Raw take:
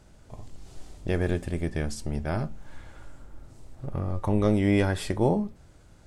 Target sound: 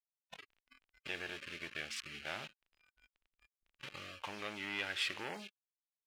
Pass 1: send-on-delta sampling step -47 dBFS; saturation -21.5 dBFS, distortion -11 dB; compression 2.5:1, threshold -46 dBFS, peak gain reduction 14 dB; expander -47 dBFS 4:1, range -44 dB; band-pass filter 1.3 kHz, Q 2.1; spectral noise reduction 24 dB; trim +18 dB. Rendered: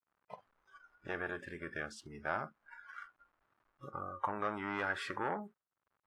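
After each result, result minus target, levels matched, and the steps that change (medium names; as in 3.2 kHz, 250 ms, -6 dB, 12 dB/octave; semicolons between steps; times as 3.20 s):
1 kHz band +8.5 dB; send-on-delta sampling: distortion -11 dB
change: band-pass filter 2.7 kHz, Q 2.1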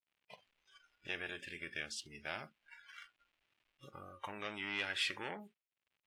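send-on-delta sampling: distortion -11 dB
change: send-on-delta sampling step -36.5 dBFS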